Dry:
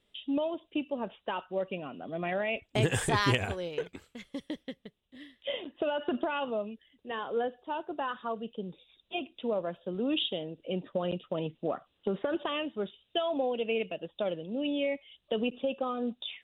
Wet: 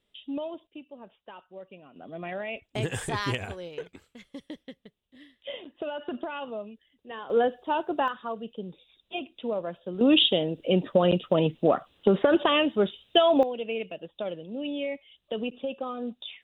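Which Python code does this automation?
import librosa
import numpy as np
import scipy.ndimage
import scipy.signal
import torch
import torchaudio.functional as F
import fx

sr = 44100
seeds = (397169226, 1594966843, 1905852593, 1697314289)

y = fx.gain(x, sr, db=fx.steps((0.0, -3.0), (0.67, -11.5), (1.96, -3.0), (7.3, 8.0), (8.08, 1.0), (10.01, 10.5), (13.43, -1.0)))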